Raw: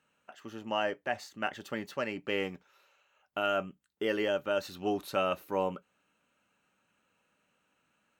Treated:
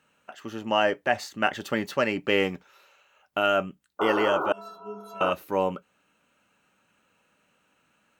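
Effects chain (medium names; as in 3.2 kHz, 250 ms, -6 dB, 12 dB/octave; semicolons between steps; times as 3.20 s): 3.99–5.31 s: painted sound noise 280–1500 Hz -33 dBFS; gain riding 2 s; 4.52–5.21 s: inharmonic resonator 200 Hz, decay 0.73 s, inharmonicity 0.03; trim +6.5 dB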